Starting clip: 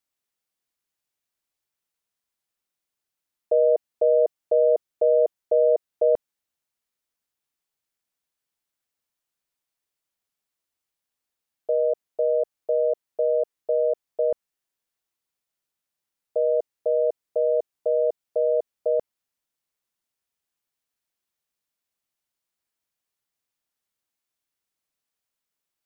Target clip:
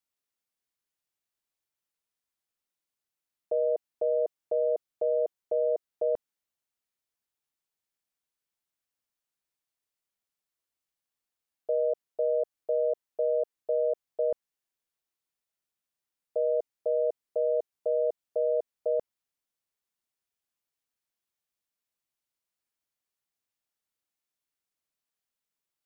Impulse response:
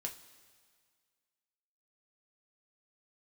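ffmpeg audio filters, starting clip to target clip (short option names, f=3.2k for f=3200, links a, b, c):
-af "alimiter=limit=-15.5dB:level=0:latency=1:release=16,volume=-4.5dB"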